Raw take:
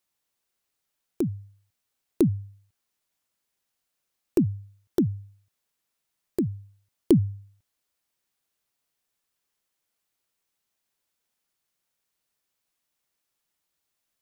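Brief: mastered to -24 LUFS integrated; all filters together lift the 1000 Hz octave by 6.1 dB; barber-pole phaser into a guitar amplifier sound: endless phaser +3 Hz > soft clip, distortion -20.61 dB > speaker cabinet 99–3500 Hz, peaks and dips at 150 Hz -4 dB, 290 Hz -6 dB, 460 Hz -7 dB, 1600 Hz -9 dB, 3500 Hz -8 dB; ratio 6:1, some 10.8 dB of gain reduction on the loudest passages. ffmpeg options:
-filter_complex "[0:a]equalizer=f=1k:t=o:g=9,acompressor=threshold=-25dB:ratio=6,asplit=2[a][b];[b]afreqshift=3[c];[a][c]amix=inputs=2:normalize=1,asoftclip=threshold=-18dB,highpass=99,equalizer=f=150:t=q:w=4:g=-4,equalizer=f=290:t=q:w=4:g=-6,equalizer=f=460:t=q:w=4:g=-7,equalizer=f=1.6k:t=q:w=4:g=-9,equalizer=f=3.5k:t=q:w=4:g=-8,lowpass=f=3.5k:w=0.5412,lowpass=f=3.5k:w=1.3066,volume=18dB"

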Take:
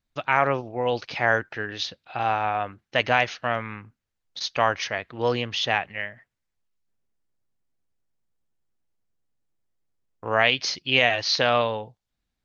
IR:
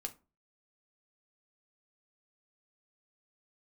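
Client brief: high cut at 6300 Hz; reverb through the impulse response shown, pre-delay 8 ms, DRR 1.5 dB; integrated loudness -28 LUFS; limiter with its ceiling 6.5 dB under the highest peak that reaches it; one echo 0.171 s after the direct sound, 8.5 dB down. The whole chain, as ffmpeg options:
-filter_complex "[0:a]lowpass=6.3k,alimiter=limit=-10.5dB:level=0:latency=1,aecho=1:1:171:0.376,asplit=2[a][b];[1:a]atrim=start_sample=2205,adelay=8[c];[b][c]afir=irnorm=-1:irlink=0,volume=0.5dB[d];[a][d]amix=inputs=2:normalize=0,volume=-4.5dB"

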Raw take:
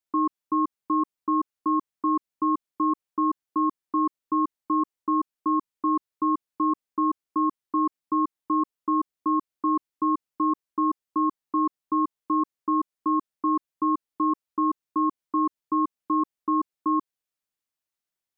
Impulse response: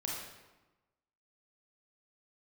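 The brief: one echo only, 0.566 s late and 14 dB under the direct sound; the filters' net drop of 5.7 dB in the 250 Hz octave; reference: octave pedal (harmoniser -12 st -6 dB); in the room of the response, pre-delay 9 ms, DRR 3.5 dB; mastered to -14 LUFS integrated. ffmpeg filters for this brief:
-filter_complex "[0:a]equalizer=f=250:t=o:g=-8,aecho=1:1:566:0.2,asplit=2[a][b];[1:a]atrim=start_sample=2205,adelay=9[c];[b][c]afir=irnorm=-1:irlink=0,volume=-5.5dB[d];[a][d]amix=inputs=2:normalize=0,asplit=2[e][f];[f]asetrate=22050,aresample=44100,atempo=2,volume=-6dB[g];[e][g]amix=inputs=2:normalize=0,volume=13.5dB"

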